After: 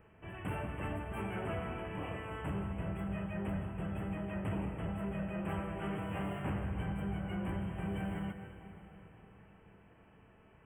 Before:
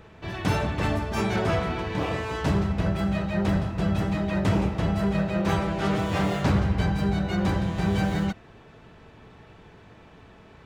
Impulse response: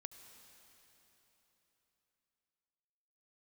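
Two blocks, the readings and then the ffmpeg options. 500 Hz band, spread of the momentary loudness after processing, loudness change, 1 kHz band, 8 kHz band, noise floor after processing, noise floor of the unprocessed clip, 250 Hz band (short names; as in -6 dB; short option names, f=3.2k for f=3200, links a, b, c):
-13.5 dB, 12 LU, -13.5 dB, -13.0 dB, under -15 dB, -62 dBFS, -51 dBFS, -13.0 dB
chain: -filter_complex "[0:a]asoftclip=type=tanh:threshold=-17.5dB,asuperstop=centerf=5000:order=20:qfactor=1.1[a];[1:a]atrim=start_sample=2205[b];[a][b]afir=irnorm=-1:irlink=0,volume=-6.5dB"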